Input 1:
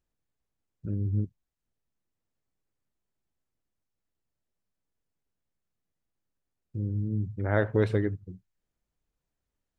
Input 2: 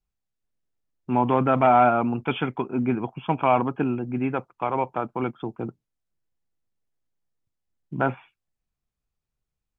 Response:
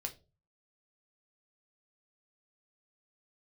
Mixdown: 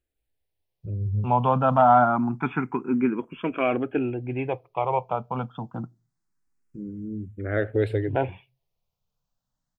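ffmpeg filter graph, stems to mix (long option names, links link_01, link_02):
-filter_complex "[0:a]volume=2.5dB[link_01];[1:a]adelay=150,volume=1dB,asplit=2[link_02][link_03];[link_03]volume=-14.5dB[link_04];[2:a]atrim=start_sample=2205[link_05];[link_04][link_05]afir=irnorm=-1:irlink=0[link_06];[link_01][link_02][link_06]amix=inputs=3:normalize=0,asplit=2[link_07][link_08];[link_08]afreqshift=0.26[link_09];[link_07][link_09]amix=inputs=2:normalize=1"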